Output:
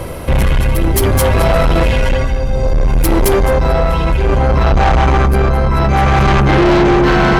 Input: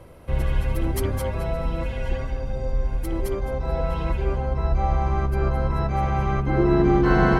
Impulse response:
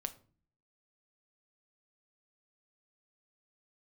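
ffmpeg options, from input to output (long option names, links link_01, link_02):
-filter_complex "[0:a]asplit=2[link_01][link_02];[link_02]aderivative[link_03];[1:a]atrim=start_sample=2205,highshelf=frequency=6200:gain=-10[link_04];[link_03][link_04]afir=irnorm=-1:irlink=0,volume=5.5dB[link_05];[link_01][link_05]amix=inputs=2:normalize=0,tremolo=f=0.62:d=0.63,asoftclip=type=tanh:threshold=-27dB,apsyclip=30dB,areverse,acompressor=mode=upward:threshold=-18dB:ratio=2.5,areverse,volume=-8dB"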